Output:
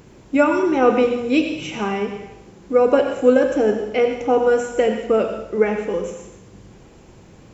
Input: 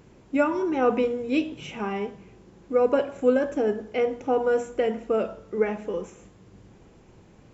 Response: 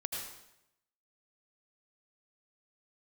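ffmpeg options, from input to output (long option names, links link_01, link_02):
-filter_complex "[0:a]asplit=2[link_01][link_02];[1:a]atrim=start_sample=2205,highshelf=frequency=3500:gain=9[link_03];[link_02][link_03]afir=irnorm=-1:irlink=0,volume=-3.5dB[link_04];[link_01][link_04]amix=inputs=2:normalize=0,volume=2.5dB"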